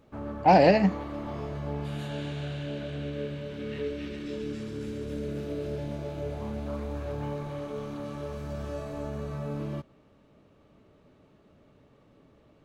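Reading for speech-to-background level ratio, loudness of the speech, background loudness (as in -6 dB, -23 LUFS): 14.5 dB, -21.5 LUFS, -36.0 LUFS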